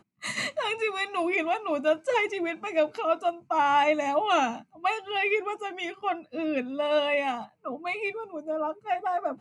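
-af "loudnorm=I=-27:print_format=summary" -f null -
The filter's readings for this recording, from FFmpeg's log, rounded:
Input Integrated:    -28.1 LUFS
Input True Peak:     -12.4 dBTP
Input LRA:             3.4 LU
Input Threshold:     -38.2 LUFS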